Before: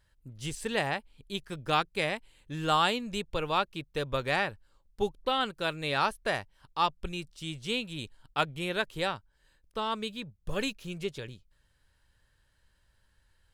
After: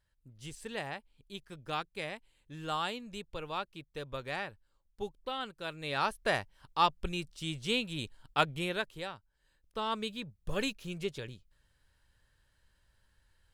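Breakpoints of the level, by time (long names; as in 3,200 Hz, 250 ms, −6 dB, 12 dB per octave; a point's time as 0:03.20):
0:05.63 −9 dB
0:06.33 +0.5 dB
0:08.58 +0.5 dB
0:09.09 −10.5 dB
0:09.93 −1.5 dB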